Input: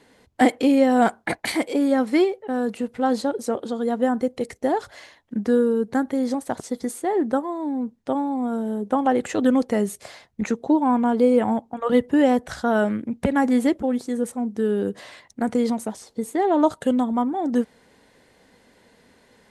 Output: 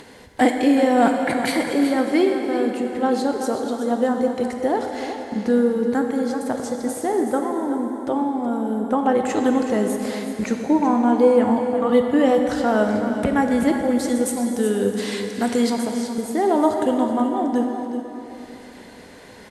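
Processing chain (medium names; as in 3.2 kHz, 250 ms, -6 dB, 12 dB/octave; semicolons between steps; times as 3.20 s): gate -48 dBFS, range -17 dB; 13.99–15.79 s: treble shelf 2.3 kHz +11.5 dB; upward compressor, threshold -23 dBFS; on a send: delay 374 ms -10.5 dB; on the sum: plate-style reverb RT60 3.4 s, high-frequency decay 0.8×, DRR 3.5 dB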